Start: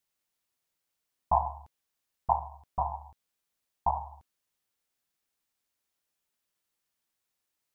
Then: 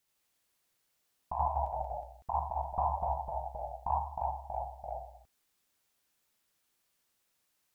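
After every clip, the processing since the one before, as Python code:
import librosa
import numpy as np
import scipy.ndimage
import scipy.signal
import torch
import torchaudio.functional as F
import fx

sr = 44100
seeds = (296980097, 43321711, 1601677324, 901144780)

y = fx.over_compress(x, sr, threshold_db=-31.0, ratio=-1.0)
y = fx.echo_pitch(y, sr, ms=81, semitones=-1, count=3, db_per_echo=-3.0)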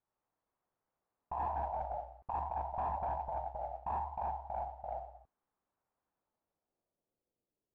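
y = fx.mod_noise(x, sr, seeds[0], snr_db=12)
y = np.clip(y, -10.0 ** (-32.0 / 20.0), 10.0 ** (-32.0 / 20.0))
y = fx.filter_sweep_lowpass(y, sr, from_hz=980.0, to_hz=450.0, start_s=6.09, end_s=7.39, q=1.5)
y = F.gain(torch.from_numpy(y), -3.5).numpy()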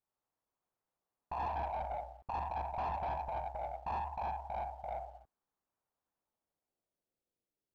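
y = fx.leveller(x, sr, passes=1)
y = F.gain(torch.from_numpy(y), -2.0).numpy()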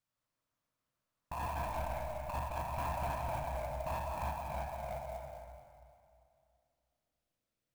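y = fx.graphic_eq_31(x, sr, hz=(125, 400, 800), db=(9, -12, -12))
y = fx.rev_freeverb(y, sr, rt60_s=2.4, hf_ratio=0.75, predelay_ms=120, drr_db=1.0)
y = fx.clock_jitter(y, sr, seeds[1], jitter_ms=0.022)
y = F.gain(torch.from_numpy(y), 3.0).numpy()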